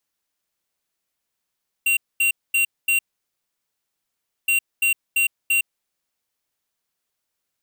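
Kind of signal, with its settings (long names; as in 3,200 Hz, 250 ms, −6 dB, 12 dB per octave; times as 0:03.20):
beeps in groups square 2,750 Hz, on 0.11 s, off 0.23 s, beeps 4, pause 1.49 s, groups 2, −18.5 dBFS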